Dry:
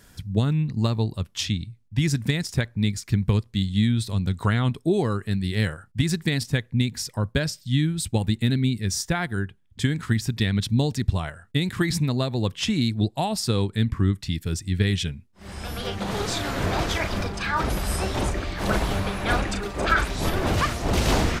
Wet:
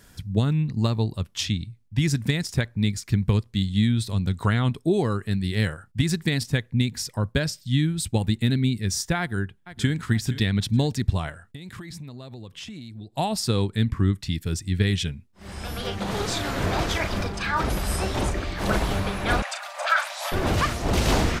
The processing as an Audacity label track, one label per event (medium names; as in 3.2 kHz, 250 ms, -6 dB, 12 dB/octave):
9.190000	9.950000	echo throw 470 ms, feedback 40%, level -14 dB
11.410000	13.170000	compression 10:1, threshold -35 dBFS
19.420000	20.320000	steep high-pass 560 Hz 96 dB/octave